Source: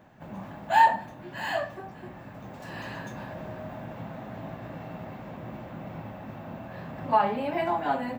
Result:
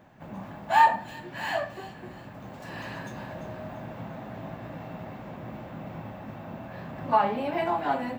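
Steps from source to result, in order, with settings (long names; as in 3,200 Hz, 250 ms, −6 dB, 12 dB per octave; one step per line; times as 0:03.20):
delay with a high-pass on its return 343 ms, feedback 41%, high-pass 2,700 Hz, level −11 dB
pitch-shifted copies added +5 semitones −16 dB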